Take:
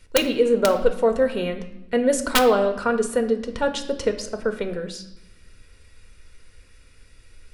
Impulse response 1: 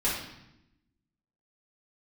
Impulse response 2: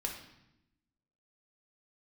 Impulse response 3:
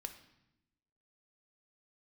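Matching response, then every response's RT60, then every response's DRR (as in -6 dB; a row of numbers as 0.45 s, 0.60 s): 3; 0.85 s, 0.85 s, 0.90 s; -9.5 dB, 0.5 dB, 6.5 dB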